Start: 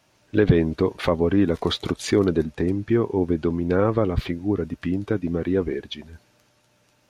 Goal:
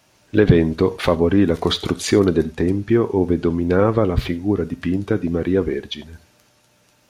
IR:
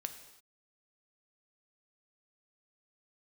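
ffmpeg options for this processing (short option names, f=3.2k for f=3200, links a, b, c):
-filter_complex "[0:a]asplit=2[a][b];[1:a]atrim=start_sample=2205,afade=t=out:st=0.15:d=0.01,atrim=end_sample=7056,highshelf=f=5.3k:g=8.5[c];[b][c]afir=irnorm=-1:irlink=0,volume=0dB[d];[a][d]amix=inputs=2:normalize=0,volume=-1dB"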